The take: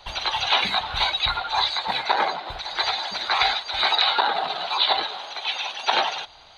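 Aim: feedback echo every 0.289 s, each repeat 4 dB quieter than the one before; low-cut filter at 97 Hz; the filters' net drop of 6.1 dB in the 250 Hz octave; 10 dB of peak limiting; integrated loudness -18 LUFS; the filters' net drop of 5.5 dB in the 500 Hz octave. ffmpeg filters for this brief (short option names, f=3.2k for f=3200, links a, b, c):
-af "highpass=97,equalizer=f=250:t=o:g=-6,equalizer=f=500:t=o:g=-7,alimiter=limit=-16.5dB:level=0:latency=1,aecho=1:1:289|578|867|1156|1445|1734|2023|2312|2601:0.631|0.398|0.25|0.158|0.0994|0.0626|0.0394|0.0249|0.0157,volume=6dB"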